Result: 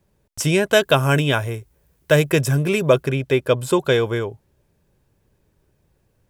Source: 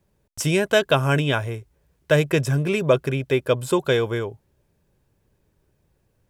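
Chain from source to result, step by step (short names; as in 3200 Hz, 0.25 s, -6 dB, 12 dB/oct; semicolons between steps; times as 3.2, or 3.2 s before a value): 0.72–3.03 high shelf 10000 Hz +11 dB; gain +2.5 dB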